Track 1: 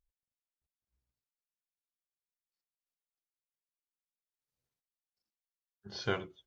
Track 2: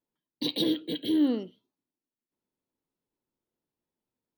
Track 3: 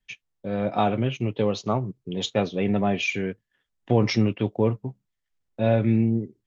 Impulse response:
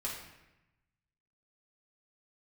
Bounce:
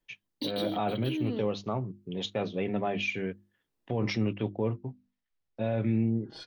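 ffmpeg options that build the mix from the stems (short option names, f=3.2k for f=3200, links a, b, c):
-filter_complex "[0:a]lowpass=4.5k,aecho=1:1:6.3:0.91,aeval=exprs='(tanh(20*val(0)+0.5)-tanh(0.5))/20':c=same,adelay=400,volume=-1.5dB[a];[1:a]alimiter=level_in=2dB:limit=-24dB:level=0:latency=1,volume=-2dB,volume=2.5dB[b];[2:a]lowpass=4.7k,bandreject=f=50:t=h:w=6,bandreject=f=100:t=h:w=6,bandreject=f=150:t=h:w=6,bandreject=f=200:t=h:w=6,bandreject=f=250:t=h:w=6,bandreject=f=300:t=h:w=6,bandreject=f=350:t=h:w=6,volume=-5dB,asplit=2[c][d];[d]apad=whole_len=197204[e];[b][e]sidechaincompress=threshold=-29dB:ratio=8:attack=6.5:release=473[f];[a][f][c]amix=inputs=3:normalize=0,alimiter=limit=-19.5dB:level=0:latency=1:release=38"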